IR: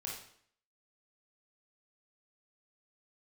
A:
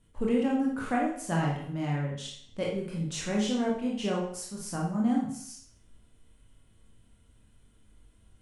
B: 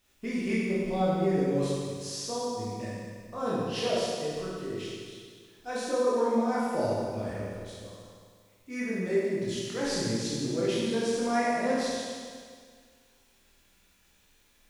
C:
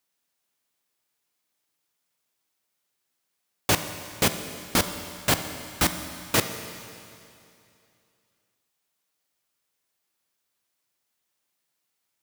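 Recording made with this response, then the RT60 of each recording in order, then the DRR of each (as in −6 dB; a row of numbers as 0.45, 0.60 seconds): A; 0.60, 1.9, 2.6 seconds; −3.0, −8.0, 8.0 decibels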